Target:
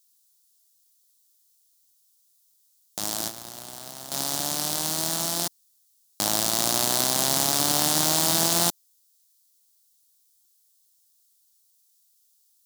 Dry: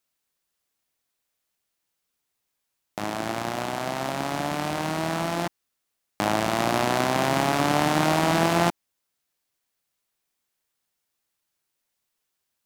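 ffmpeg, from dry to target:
ffmpeg -i in.wav -filter_complex "[0:a]asettb=1/sr,asplit=3[link_01][link_02][link_03];[link_01]atrim=end=3.284[link_04];[link_02]atrim=start=3.28:end=4.12,asetpts=PTS-STARTPTS,afade=type=in:duration=0.004:curve=qsin,afade=type=out:start_time=0.836:duration=0.004:curve=qsin,acrossover=split=120|3100[link_05][link_06][link_07];[link_05]acompressor=threshold=-52dB:ratio=4[link_08];[link_06]acompressor=threshold=-37dB:ratio=4[link_09];[link_07]acompressor=threshold=-55dB:ratio=4[link_10];[link_08][link_09][link_10]amix=inputs=3:normalize=0[link_11];[link_03]atrim=start=4.116[link_12];[link_04][link_11]acrossfade=duration=0.004:curve1=hsin:curve2=qsin[link_13];[link_13][link_12]acrossfade=duration=0.004:curve1=qsin:curve2=hsin,acrusher=bits=4:mode=log:mix=0:aa=0.000001,aexciter=amount=4.6:drive=9.2:freq=3500,volume=-6.5dB" out.wav

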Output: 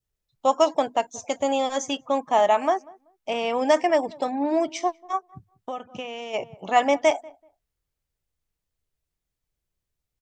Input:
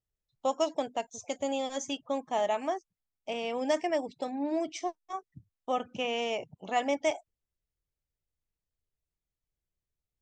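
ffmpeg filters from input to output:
ffmpeg -i in.wav -filter_complex "[0:a]asplit=2[link_01][link_02];[link_02]adelay=191,lowpass=frequency=1200:poles=1,volume=-22.5dB,asplit=2[link_03][link_04];[link_04]adelay=191,lowpass=frequency=1200:poles=1,volume=0.23[link_05];[link_01][link_03][link_05]amix=inputs=3:normalize=0,asplit=3[link_06][link_07][link_08];[link_06]afade=type=out:start_time=5.17:duration=0.02[link_09];[link_07]acompressor=threshold=-39dB:ratio=4,afade=type=in:start_time=5.17:duration=0.02,afade=type=out:start_time=6.33:duration=0.02[link_10];[link_08]afade=type=in:start_time=6.33:duration=0.02[link_11];[link_09][link_10][link_11]amix=inputs=3:normalize=0,adynamicequalizer=threshold=0.00708:dfrequency=1100:dqfactor=0.94:tfrequency=1100:tqfactor=0.94:attack=5:release=100:ratio=0.375:range=3.5:mode=boostabove:tftype=bell,volume=6dB" out.wav

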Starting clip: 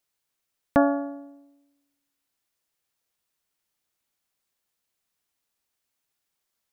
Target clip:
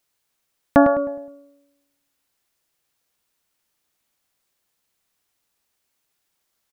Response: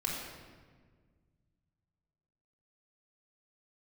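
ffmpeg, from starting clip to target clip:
-filter_complex "[0:a]asplit=2[link_01][link_02];[link_02]adelay=104,lowpass=frequency=2200:poles=1,volume=-7dB,asplit=2[link_03][link_04];[link_04]adelay=104,lowpass=frequency=2200:poles=1,volume=0.4,asplit=2[link_05][link_06];[link_06]adelay=104,lowpass=frequency=2200:poles=1,volume=0.4,asplit=2[link_07][link_08];[link_08]adelay=104,lowpass=frequency=2200:poles=1,volume=0.4,asplit=2[link_09][link_10];[link_10]adelay=104,lowpass=frequency=2200:poles=1,volume=0.4[link_11];[link_01][link_03][link_05][link_07][link_09][link_11]amix=inputs=6:normalize=0,volume=6dB"

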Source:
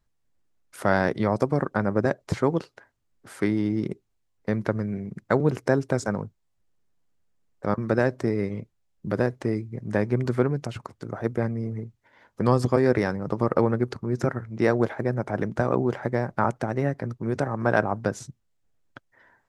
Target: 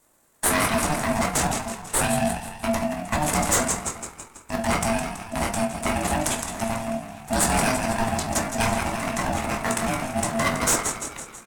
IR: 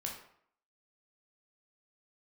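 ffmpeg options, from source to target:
-filter_complex "[0:a]asplit=2[link_01][link_02];[link_02]asplit=6[link_03][link_04][link_05][link_06][link_07][link_08];[link_03]adelay=281,afreqshift=61,volume=-9dB[link_09];[link_04]adelay=562,afreqshift=122,volume=-14.7dB[link_10];[link_05]adelay=843,afreqshift=183,volume=-20.4dB[link_11];[link_06]adelay=1124,afreqshift=244,volume=-26dB[link_12];[link_07]adelay=1405,afreqshift=305,volume=-31.7dB[link_13];[link_08]adelay=1686,afreqshift=366,volume=-37.4dB[link_14];[link_09][link_10][link_11][link_12][link_13][link_14]amix=inputs=6:normalize=0[link_15];[link_01][link_15]amix=inputs=2:normalize=0,aexciter=amount=2.4:drive=3.8:freq=2600,equalizer=frequency=250:width_type=o:width=1:gain=3,equalizer=frequency=500:width_type=o:width=1:gain=-5,equalizer=frequency=1000:width_type=o:width=1:gain=-6,equalizer=frequency=2000:width_type=o:width=1:gain=11,equalizer=frequency=4000:width_type=o:width=1:gain=5,equalizer=frequency=8000:width_type=o:width=1:gain=11,crystalizer=i=4:c=0,highpass=frequency=180:width=0.5412,highpass=frequency=180:width=1.3066,equalizer=frequency=4200:width_type=o:width=1.1:gain=-9.5,asplit=2[link_16][link_17];[link_17]acrusher=samples=17:mix=1:aa=0.000001,volume=-3dB[link_18];[link_16][link_18]amix=inputs=2:normalize=0[link_19];[1:a]atrim=start_sample=2205,afade=type=out:start_time=0.28:duration=0.01,atrim=end_sample=12789[link_20];[link_19][link_20]afir=irnorm=-1:irlink=0,atempo=1.7,asoftclip=type=hard:threshold=-13.5dB,aeval=exprs='val(0)*sin(2*PI*450*n/s)':channel_layout=same"

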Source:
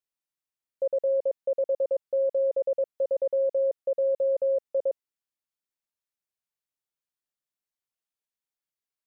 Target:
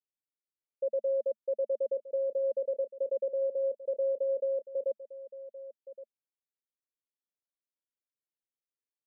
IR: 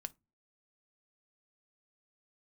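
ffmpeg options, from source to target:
-af "asuperpass=centerf=360:order=20:qfactor=0.93,aecho=1:1:1119:0.168,volume=-4.5dB"

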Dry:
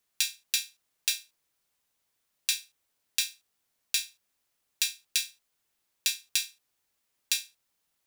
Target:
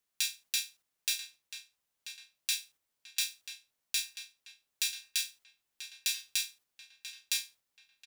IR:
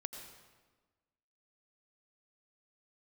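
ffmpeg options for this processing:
-filter_complex "[0:a]agate=range=-6dB:threshold=-56dB:ratio=16:detection=peak,alimiter=limit=-10.5dB:level=0:latency=1:release=50,asplit=2[link_01][link_02];[link_02]adelay=987,lowpass=frequency=3700:poles=1,volume=-9dB,asplit=2[link_03][link_04];[link_04]adelay=987,lowpass=frequency=3700:poles=1,volume=0.52,asplit=2[link_05][link_06];[link_06]adelay=987,lowpass=frequency=3700:poles=1,volume=0.52,asplit=2[link_07][link_08];[link_08]adelay=987,lowpass=frequency=3700:poles=1,volume=0.52,asplit=2[link_09][link_10];[link_10]adelay=987,lowpass=frequency=3700:poles=1,volume=0.52,asplit=2[link_11][link_12];[link_12]adelay=987,lowpass=frequency=3700:poles=1,volume=0.52[link_13];[link_01][link_03][link_05][link_07][link_09][link_11][link_13]amix=inputs=7:normalize=0"

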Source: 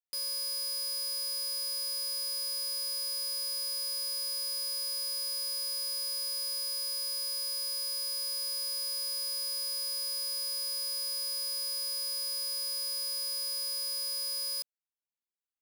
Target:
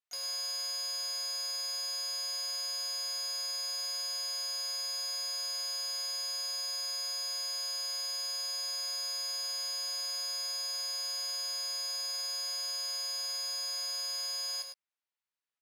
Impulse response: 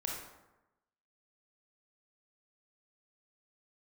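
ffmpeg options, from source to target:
-filter_complex "[0:a]asplit=2[link_01][link_02];[link_02]asetrate=58866,aresample=44100,atempo=0.749154,volume=-8dB[link_03];[link_01][link_03]amix=inputs=2:normalize=0,bandpass=frequency=1700:width_type=q:width=0.53:csg=0,asplit=2[link_04][link_05];[link_05]adelay=15,volume=-8dB[link_06];[link_04][link_06]amix=inputs=2:normalize=0,asplit=2[link_07][link_08];[link_08]aecho=0:1:103:0.501[link_09];[link_07][link_09]amix=inputs=2:normalize=0,volume=3dB"

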